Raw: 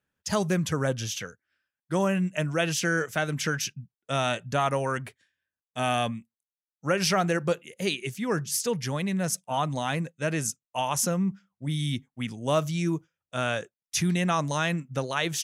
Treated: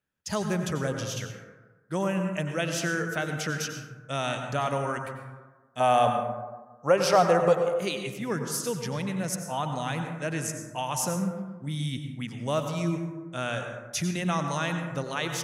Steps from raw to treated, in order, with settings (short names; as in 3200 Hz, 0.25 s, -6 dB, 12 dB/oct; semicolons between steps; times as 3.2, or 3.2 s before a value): 5.8–7.63 band shelf 710 Hz +10 dB; plate-style reverb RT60 1.3 s, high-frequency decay 0.35×, pre-delay 80 ms, DRR 5 dB; gain -3.5 dB